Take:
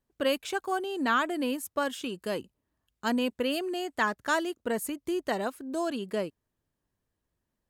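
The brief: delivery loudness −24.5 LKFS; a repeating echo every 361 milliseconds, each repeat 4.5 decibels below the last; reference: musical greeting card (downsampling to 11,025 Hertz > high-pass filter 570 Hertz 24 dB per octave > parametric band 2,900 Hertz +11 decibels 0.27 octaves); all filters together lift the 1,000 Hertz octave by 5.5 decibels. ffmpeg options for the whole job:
ffmpeg -i in.wav -af "equalizer=frequency=1000:width_type=o:gain=7,aecho=1:1:361|722|1083|1444|1805|2166|2527|2888|3249:0.596|0.357|0.214|0.129|0.0772|0.0463|0.0278|0.0167|0.01,aresample=11025,aresample=44100,highpass=frequency=570:width=0.5412,highpass=frequency=570:width=1.3066,equalizer=frequency=2900:width_type=o:width=0.27:gain=11,volume=2.5dB" out.wav

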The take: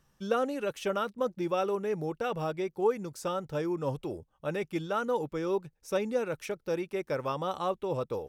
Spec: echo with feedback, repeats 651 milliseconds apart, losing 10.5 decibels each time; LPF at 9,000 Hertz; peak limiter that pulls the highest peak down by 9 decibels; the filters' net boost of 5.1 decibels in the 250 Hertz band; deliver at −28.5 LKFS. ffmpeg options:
ffmpeg -i in.wav -af "lowpass=9000,equalizer=frequency=250:width_type=o:gain=7.5,alimiter=limit=-22.5dB:level=0:latency=1,aecho=1:1:651|1302|1953:0.299|0.0896|0.0269,volume=3.5dB" out.wav

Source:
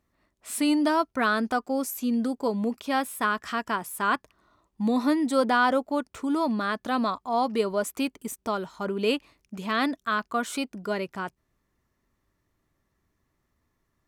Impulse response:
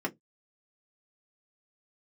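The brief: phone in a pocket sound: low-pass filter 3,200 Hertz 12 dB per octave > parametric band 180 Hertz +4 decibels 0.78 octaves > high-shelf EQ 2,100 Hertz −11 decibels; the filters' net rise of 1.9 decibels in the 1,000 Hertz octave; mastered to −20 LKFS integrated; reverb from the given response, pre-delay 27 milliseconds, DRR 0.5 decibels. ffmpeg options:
-filter_complex "[0:a]equalizer=frequency=1000:width_type=o:gain=5,asplit=2[link_01][link_02];[1:a]atrim=start_sample=2205,adelay=27[link_03];[link_02][link_03]afir=irnorm=-1:irlink=0,volume=-6.5dB[link_04];[link_01][link_04]amix=inputs=2:normalize=0,lowpass=3200,equalizer=frequency=180:width_type=o:width=0.78:gain=4,highshelf=frequency=2100:gain=-11,volume=1dB"

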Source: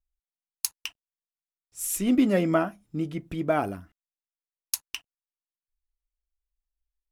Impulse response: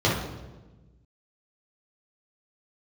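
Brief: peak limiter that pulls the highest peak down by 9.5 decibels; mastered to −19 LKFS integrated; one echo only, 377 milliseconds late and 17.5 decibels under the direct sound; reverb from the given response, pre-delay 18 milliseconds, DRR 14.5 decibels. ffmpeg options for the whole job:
-filter_complex "[0:a]alimiter=limit=-15dB:level=0:latency=1,aecho=1:1:377:0.133,asplit=2[link_01][link_02];[1:a]atrim=start_sample=2205,adelay=18[link_03];[link_02][link_03]afir=irnorm=-1:irlink=0,volume=-31dB[link_04];[link_01][link_04]amix=inputs=2:normalize=0,volume=9.5dB"

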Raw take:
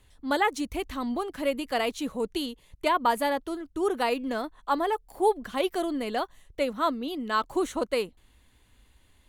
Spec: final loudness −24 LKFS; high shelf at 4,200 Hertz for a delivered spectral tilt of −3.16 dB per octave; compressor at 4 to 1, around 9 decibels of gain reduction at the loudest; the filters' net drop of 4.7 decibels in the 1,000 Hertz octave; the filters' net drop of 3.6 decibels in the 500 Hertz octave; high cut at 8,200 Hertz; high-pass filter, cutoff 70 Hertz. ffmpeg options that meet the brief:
ffmpeg -i in.wav -af "highpass=70,lowpass=8200,equalizer=frequency=500:width_type=o:gain=-3.5,equalizer=frequency=1000:width_type=o:gain=-5,highshelf=frequency=4200:gain=5.5,acompressor=threshold=-34dB:ratio=4,volume=14dB" out.wav

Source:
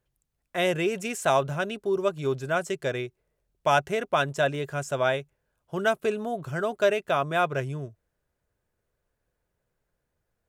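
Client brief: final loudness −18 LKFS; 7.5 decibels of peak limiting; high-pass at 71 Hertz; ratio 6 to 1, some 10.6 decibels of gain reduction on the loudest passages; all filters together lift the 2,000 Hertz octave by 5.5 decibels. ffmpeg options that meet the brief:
ffmpeg -i in.wav -af "highpass=71,equalizer=frequency=2000:width_type=o:gain=8,acompressor=threshold=-27dB:ratio=6,volume=16.5dB,alimiter=limit=-6dB:level=0:latency=1" out.wav

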